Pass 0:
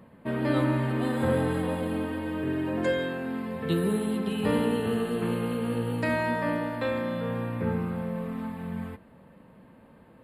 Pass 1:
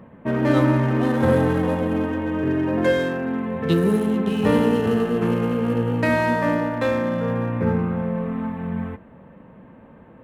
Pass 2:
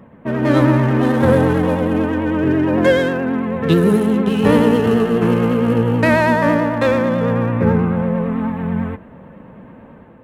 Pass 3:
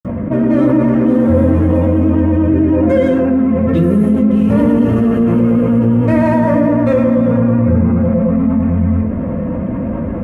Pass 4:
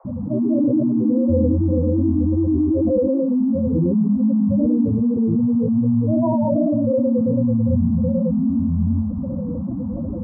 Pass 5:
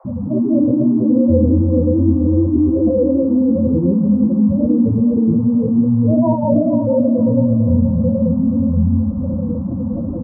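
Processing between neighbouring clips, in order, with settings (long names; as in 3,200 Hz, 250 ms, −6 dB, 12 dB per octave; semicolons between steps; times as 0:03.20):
adaptive Wiener filter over 9 samples; level +7.5 dB
automatic gain control gain up to 5 dB; pitch vibrato 9.1 Hz 51 cents; level +1.5 dB
convolution reverb RT60 0.30 s, pre-delay 47 ms; envelope flattener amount 70%; level +3 dB
pitch vibrato 2.6 Hz 61 cents; gate on every frequency bin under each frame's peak −10 dB strong; noise in a band 500–1,100 Hz −48 dBFS; level −5.5 dB
flanger 0.81 Hz, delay 7.5 ms, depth 9.1 ms, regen −53%; repeating echo 476 ms, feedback 41%, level −10.5 dB; level +7.5 dB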